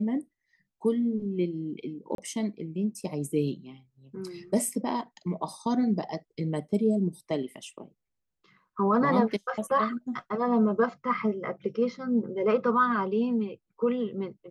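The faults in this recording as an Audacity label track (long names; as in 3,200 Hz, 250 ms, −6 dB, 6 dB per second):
2.150000	2.180000	drop-out 32 ms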